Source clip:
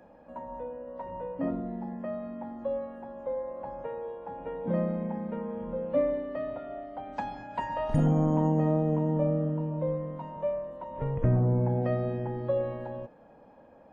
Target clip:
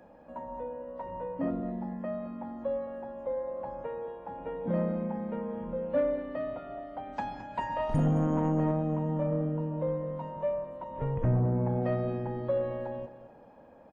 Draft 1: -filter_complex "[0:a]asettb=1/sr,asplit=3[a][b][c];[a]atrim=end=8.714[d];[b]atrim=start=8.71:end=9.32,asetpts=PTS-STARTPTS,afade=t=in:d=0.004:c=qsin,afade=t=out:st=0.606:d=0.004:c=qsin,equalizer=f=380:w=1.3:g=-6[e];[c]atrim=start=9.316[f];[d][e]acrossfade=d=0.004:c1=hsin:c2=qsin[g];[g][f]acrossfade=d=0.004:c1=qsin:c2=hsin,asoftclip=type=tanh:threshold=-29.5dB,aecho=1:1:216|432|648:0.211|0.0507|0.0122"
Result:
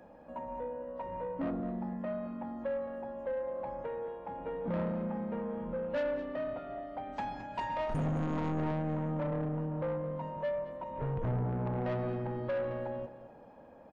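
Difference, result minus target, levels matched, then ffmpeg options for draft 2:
soft clip: distortion +11 dB
-filter_complex "[0:a]asettb=1/sr,asplit=3[a][b][c];[a]atrim=end=8.714[d];[b]atrim=start=8.71:end=9.32,asetpts=PTS-STARTPTS,afade=t=in:d=0.004:c=qsin,afade=t=out:st=0.606:d=0.004:c=qsin,equalizer=f=380:w=1.3:g=-6[e];[c]atrim=start=9.316[f];[d][e]acrossfade=d=0.004:c1=hsin:c2=qsin[g];[g][f]acrossfade=d=0.004:c1=qsin:c2=hsin,asoftclip=type=tanh:threshold=-18.5dB,aecho=1:1:216|432|648:0.211|0.0507|0.0122"

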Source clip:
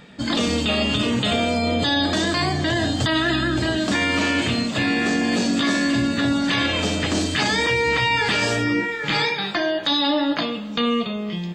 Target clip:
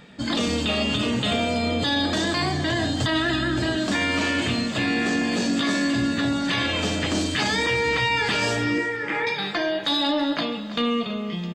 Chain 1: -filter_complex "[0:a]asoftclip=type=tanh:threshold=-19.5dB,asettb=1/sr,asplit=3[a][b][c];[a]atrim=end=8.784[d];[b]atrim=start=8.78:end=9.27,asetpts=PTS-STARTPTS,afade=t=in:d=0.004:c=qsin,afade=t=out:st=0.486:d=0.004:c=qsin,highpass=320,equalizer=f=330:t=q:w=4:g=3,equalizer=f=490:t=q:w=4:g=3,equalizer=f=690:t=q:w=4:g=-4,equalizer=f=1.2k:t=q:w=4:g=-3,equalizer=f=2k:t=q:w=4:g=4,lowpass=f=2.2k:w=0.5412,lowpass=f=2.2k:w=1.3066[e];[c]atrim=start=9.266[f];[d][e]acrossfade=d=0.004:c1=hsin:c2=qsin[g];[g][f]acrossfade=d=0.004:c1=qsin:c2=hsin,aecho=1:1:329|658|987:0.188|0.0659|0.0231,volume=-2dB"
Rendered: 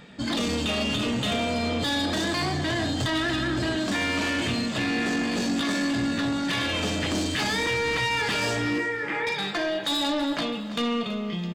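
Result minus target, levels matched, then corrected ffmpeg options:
soft clip: distortion +14 dB
-filter_complex "[0:a]asoftclip=type=tanh:threshold=-9.5dB,asettb=1/sr,asplit=3[a][b][c];[a]atrim=end=8.784[d];[b]atrim=start=8.78:end=9.27,asetpts=PTS-STARTPTS,afade=t=in:d=0.004:c=qsin,afade=t=out:st=0.486:d=0.004:c=qsin,highpass=320,equalizer=f=330:t=q:w=4:g=3,equalizer=f=490:t=q:w=4:g=3,equalizer=f=690:t=q:w=4:g=-4,equalizer=f=1.2k:t=q:w=4:g=-3,equalizer=f=2k:t=q:w=4:g=4,lowpass=f=2.2k:w=0.5412,lowpass=f=2.2k:w=1.3066[e];[c]atrim=start=9.266[f];[d][e]acrossfade=d=0.004:c1=hsin:c2=qsin[g];[g][f]acrossfade=d=0.004:c1=qsin:c2=hsin,aecho=1:1:329|658|987:0.188|0.0659|0.0231,volume=-2dB"

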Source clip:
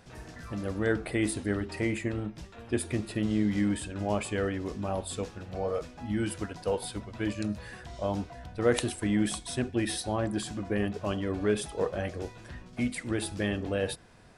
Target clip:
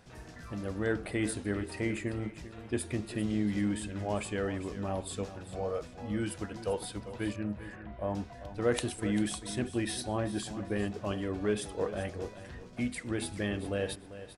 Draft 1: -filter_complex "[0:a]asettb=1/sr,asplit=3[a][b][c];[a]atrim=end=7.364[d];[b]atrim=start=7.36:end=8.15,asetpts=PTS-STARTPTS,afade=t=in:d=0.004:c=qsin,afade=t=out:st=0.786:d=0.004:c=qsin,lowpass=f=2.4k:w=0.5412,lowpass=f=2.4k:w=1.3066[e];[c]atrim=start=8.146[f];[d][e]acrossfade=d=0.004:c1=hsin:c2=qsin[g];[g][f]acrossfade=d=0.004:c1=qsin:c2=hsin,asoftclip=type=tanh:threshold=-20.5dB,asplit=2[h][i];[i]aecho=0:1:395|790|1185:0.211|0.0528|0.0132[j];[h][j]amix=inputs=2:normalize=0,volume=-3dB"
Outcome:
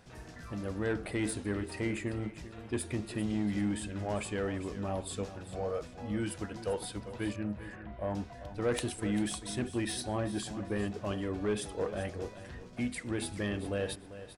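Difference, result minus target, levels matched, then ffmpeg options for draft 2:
soft clip: distortion +14 dB
-filter_complex "[0:a]asettb=1/sr,asplit=3[a][b][c];[a]atrim=end=7.364[d];[b]atrim=start=7.36:end=8.15,asetpts=PTS-STARTPTS,afade=t=in:d=0.004:c=qsin,afade=t=out:st=0.786:d=0.004:c=qsin,lowpass=f=2.4k:w=0.5412,lowpass=f=2.4k:w=1.3066[e];[c]atrim=start=8.146[f];[d][e]acrossfade=d=0.004:c1=hsin:c2=qsin[g];[g][f]acrossfade=d=0.004:c1=qsin:c2=hsin,asoftclip=type=tanh:threshold=-11.5dB,asplit=2[h][i];[i]aecho=0:1:395|790|1185:0.211|0.0528|0.0132[j];[h][j]amix=inputs=2:normalize=0,volume=-3dB"

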